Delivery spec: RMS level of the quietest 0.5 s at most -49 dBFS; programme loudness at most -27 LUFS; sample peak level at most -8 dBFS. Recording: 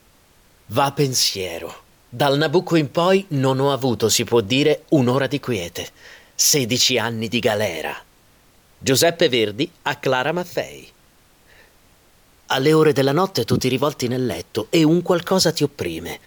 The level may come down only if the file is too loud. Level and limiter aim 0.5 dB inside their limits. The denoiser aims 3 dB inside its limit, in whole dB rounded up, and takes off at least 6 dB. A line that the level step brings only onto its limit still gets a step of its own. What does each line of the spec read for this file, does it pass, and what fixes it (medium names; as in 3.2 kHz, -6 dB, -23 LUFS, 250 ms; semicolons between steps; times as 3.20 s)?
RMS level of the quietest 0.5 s -54 dBFS: pass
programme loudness -19.0 LUFS: fail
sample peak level -6.0 dBFS: fail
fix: trim -8.5 dB